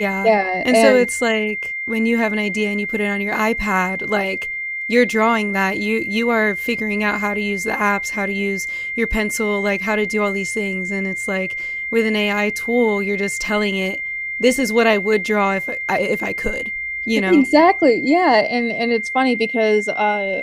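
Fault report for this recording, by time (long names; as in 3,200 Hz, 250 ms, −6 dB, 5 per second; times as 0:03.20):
whistle 2,100 Hz −23 dBFS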